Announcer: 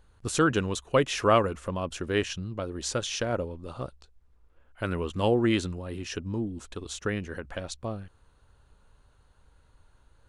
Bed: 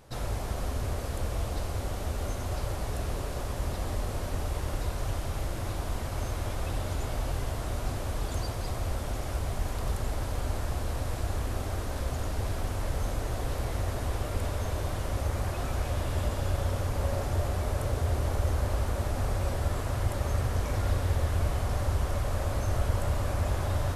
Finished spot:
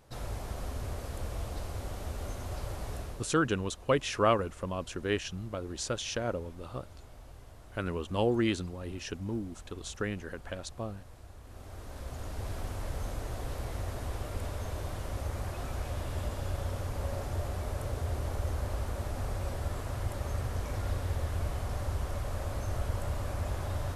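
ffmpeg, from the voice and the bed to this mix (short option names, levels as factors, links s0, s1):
-filter_complex "[0:a]adelay=2950,volume=0.631[s0];[1:a]volume=2.66,afade=t=out:st=2.94:d=0.38:silence=0.199526,afade=t=in:st=11.42:d=1.15:silence=0.199526[s1];[s0][s1]amix=inputs=2:normalize=0"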